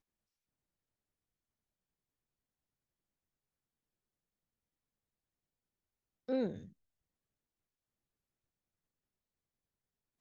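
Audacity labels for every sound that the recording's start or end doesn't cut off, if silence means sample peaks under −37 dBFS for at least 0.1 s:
6.290000	6.560000	sound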